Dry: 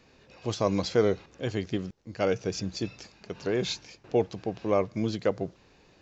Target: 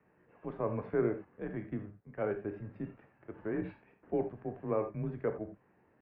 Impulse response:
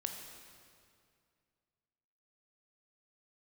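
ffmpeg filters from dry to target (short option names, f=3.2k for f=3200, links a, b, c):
-filter_complex "[0:a]asetrate=48091,aresample=44100,atempo=0.917004,highpass=f=200:t=q:w=0.5412,highpass=f=200:t=q:w=1.307,lowpass=f=2.1k:t=q:w=0.5176,lowpass=f=2.1k:t=q:w=0.7071,lowpass=f=2.1k:t=q:w=1.932,afreqshift=-98[a];[1:a]atrim=start_sample=2205,atrim=end_sample=4410[b];[a][b]afir=irnorm=-1:irlink=0,volume=-6dB"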